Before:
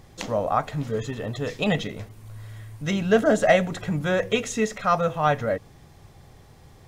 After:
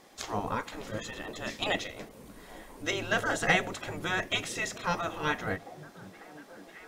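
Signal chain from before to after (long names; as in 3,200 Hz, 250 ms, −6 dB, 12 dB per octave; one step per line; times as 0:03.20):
gate on every frequency bin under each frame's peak −10 dB weak
echo through a band-pass that steps 543 ms, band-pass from 160 Hz, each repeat 0.7 octaves, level −9 dB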